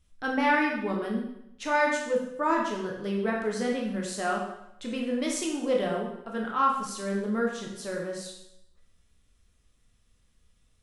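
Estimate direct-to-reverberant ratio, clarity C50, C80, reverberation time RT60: -1.5 dB, 3.5 dB, 6.5 dB, 0.80 s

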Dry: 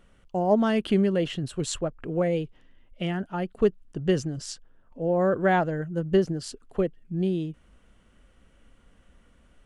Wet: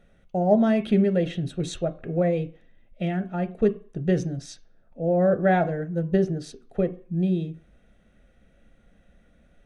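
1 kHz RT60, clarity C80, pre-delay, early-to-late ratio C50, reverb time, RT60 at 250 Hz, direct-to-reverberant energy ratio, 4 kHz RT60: 0.45 s, 21.5 dB, 3 ms, 16.5 dB, 0.45 s, 0.35 s, 10.0 dB, 0.45 s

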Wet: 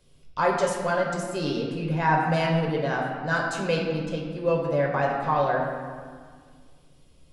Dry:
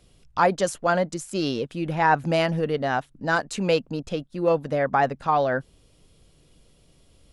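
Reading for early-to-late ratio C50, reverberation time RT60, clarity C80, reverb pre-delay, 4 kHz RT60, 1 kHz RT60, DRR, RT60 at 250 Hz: 2.5 dB, 1.8 s, 4.0 dB, 5 ms, 1.2 s, 1.9 s, -1.5 dB, 2.5 s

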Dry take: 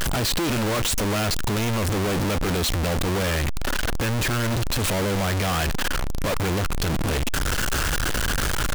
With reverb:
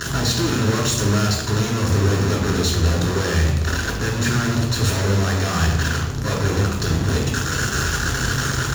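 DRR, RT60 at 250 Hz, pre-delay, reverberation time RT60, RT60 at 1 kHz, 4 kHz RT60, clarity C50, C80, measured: -0.5 dB, 1.4 s, 3 ms, 1.1 s, 0.95 s, 0.75 s, 4.5 dB, 6.5 dB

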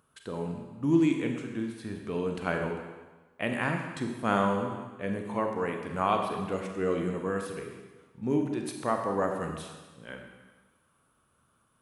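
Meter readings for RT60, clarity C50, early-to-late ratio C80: 1.3 s, 4.5 dB, 6.0 dB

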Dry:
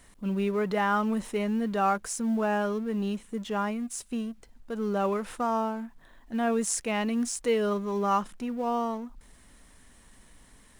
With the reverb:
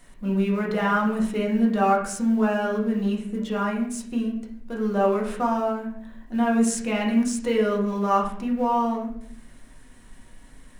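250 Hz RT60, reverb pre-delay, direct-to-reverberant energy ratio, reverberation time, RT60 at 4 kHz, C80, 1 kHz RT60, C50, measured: 1.1 s, 4 ms, -2.0 dB, 0.65 s, 0.45 s, 10.0 dB, 0.55 s, 6.0 dB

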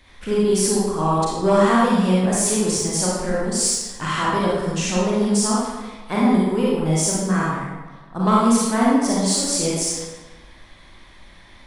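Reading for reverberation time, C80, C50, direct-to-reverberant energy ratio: 1.3 s, 1.0 dB, -2.5 dB, -6.5 dB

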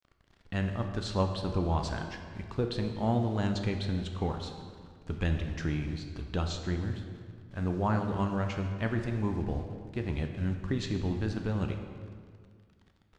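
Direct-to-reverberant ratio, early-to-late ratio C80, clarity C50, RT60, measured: 4.5 dB, 7.5 dB, 6.0 dB, 2.0 s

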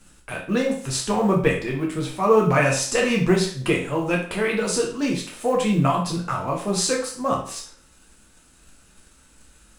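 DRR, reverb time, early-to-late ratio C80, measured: -2.0 dB, 0.45 s, 10.5 dB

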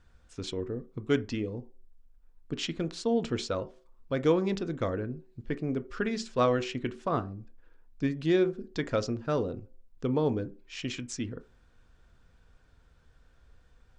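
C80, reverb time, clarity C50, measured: 25.5 dB, 0.40 s, 19.5 dB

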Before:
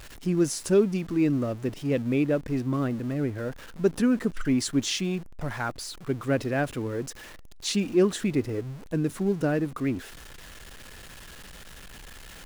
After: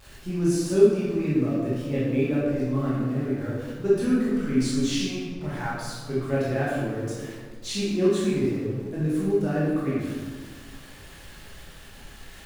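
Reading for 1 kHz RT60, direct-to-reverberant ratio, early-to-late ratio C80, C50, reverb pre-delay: 1.4 s, -8.5 dB, 1.5 dB, -2.0 dB, 14 ms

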